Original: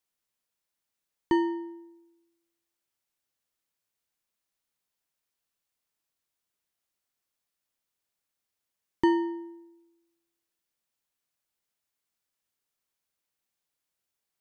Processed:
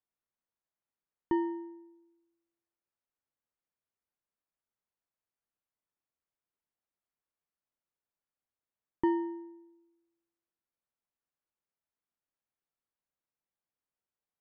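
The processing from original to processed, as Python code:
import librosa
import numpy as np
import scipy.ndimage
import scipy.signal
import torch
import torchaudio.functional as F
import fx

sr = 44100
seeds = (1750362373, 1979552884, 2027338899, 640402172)

y = scipy.signal.sosfilt(scipy.signal.butter(2, 1600.0, 'lowpass', fs=sr, output='sos'), x)
y = y * 10.0 ** (-5.0 / 20.0)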